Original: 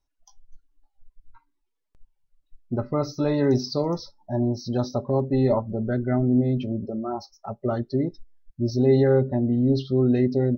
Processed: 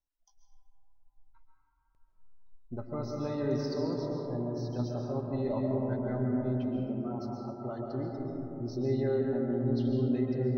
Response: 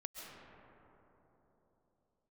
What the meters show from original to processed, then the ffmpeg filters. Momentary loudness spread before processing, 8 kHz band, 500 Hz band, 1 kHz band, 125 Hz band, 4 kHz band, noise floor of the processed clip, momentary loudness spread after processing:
11 LU, can't be measured, −9.0 dB, −9.0 dB, −9.0 dB, −11.5 dB, −71 dBFS, 9 LU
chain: -filter_complex "[1:a]atrim=start_sample=2205[link_01];[0:a][link_01]afir=irnorm=-1:irlink=0,volume=-7dB"

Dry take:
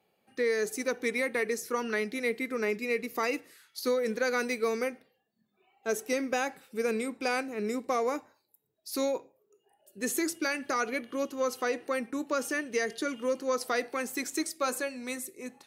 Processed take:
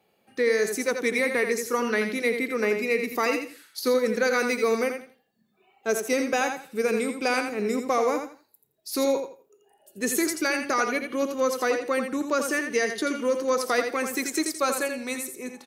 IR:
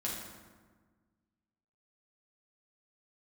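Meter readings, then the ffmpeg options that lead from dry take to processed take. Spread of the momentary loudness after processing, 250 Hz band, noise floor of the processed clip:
7 LU, +5.5 dB, −68 dBFS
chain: -af "aecho=1:1:84|168|252:0.447|0.103|0.0236,volume=5dB"

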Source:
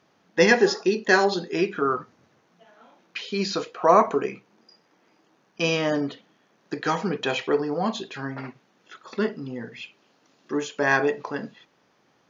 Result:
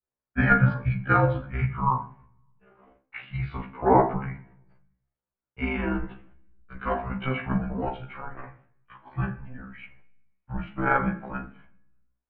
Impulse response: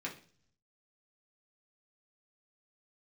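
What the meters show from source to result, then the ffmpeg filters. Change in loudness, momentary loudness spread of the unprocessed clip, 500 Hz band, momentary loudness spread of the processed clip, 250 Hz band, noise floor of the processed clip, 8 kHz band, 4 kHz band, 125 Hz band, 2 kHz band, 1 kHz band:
−2.5 dB, 17 LU, −7.5 dB, 21 LU, −2.0 dB, below −85 dBFS, can't be measured, −17.5 dB, +9.5 dB, −4.0 dB, −0.5 dB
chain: -filter_complex "[0:a]agate=range=-28dB:threshold=-55dB:ratio=16:detection=peak,highpass=frequency=230:width_type=q:width=0.5412,highpass=frequency=230:width_type=q:width=1.307,lowpass=frequency=2700:width_type=q:width=0.5176,lowpass=frequency=2700:width_type=q:width=0.7071,lowpass=frequency=2700:width_type=q:width=1.932,afreqshift=-260,tremolo=f=25:d=1,asplit=2[link_01][link_02];[1:a]atrim=start_sample=2205,asetrate=30429,aresample=44100,adelay=27[link_03];[link_02][link_03]afir=irnorm=-1:irlink=0,volume=-12.5dB[link_04];[link_01][link_04]amix=inputs=2:normalize=0,adynamicequalizer=threshold=0.0158:dfrequency=1000:dqfactor=1.1:tfrequency=1000:tqfactor=1.1:attack=5:release=100:ratio=0.375:range=2:mode=boostabove:tftype=bell,afftfilt=real='re*1.73*eq(mod(b,3),0)':imag='im*1.73*eq(mod(b,3),0)':win_size=2048:overlap=0.75,volume=3dB"

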